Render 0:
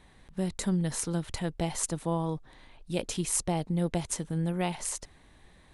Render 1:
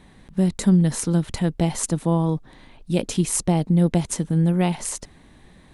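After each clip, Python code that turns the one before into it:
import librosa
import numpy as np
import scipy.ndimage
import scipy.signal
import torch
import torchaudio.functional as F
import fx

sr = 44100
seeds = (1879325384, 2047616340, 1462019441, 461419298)

y = fx.peak_eq(x, sr, hz=210.0, db=7.5, octaves=1.6)
y = y * 10.0 ** (5.0 / 20.0)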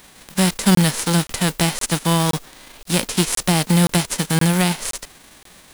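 y = fx.envelope_flatten(x, sr, power=0.3)
y = 10.0 ** (-4.0 / 20.0) * np.tanh(y / 10.0 ** (-4.0 / 20.0))
y = fx.buffer_crackle(y, sr, first_s=0.75, period_s=0.52, block=1024, kind='zero')
y = y * 10.0 ** (3.0 / 20.0)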